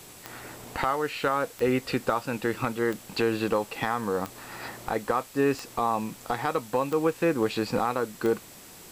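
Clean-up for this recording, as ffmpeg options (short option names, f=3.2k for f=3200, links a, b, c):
-af "adeclick=t=4,bandreject=f=7.7k:w=30,afwtdn=0.004"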